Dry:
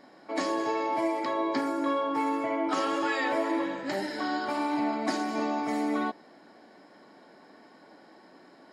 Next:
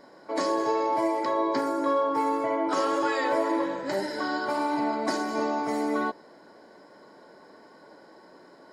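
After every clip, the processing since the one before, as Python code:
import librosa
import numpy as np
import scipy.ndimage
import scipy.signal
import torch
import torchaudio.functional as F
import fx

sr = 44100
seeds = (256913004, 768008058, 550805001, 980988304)

y = fx.peak_eq(x, sr, hz=2700.0, db=-7.0, octaves=0.96)
y = y + 0.38 * np.pad(y, (int(2.0 * sr / 1000.0), 0))[:len(y)]
y = y * librosa.db_to_amplitude(3.0)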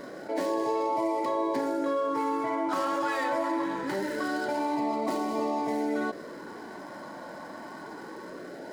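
y = scipy.signal.medfilt(x, 9)
y = fx.filter_lfo_notch(y, sr, shape='sine', hz=0.24, low_hz=410.0, high_hz=1600.0, q=2.3)
y = fx.env_flatten(y, sr, amount_pct=50)
y = y * librosa.db_to_amplitude(-3.0)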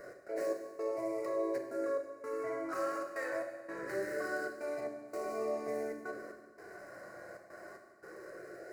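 y = fx.fixed_phaser(x, sr, hz=910.0, stages=6)
y = fx.step_gate(y, sr, bpm=114, pattern='x.xx..xxxxx', floor_db=-24.0, edge_ms=4.5)
y = fx.rev_fdn(y, sr, rt60_s=1.3, lf_ratio=1.2, hf_ratio=0.95, size_ms=25.0, drr_db=2.5)
y = y * librosa.db_to_amplitude(-6.0)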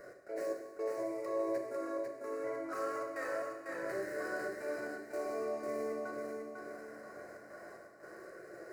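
y = fx.echo_feedback(x, sr, ms=498, feedback_pct=40, wet_db=-4.0)
y = y * librosa.db_to_amplitude(-2.5)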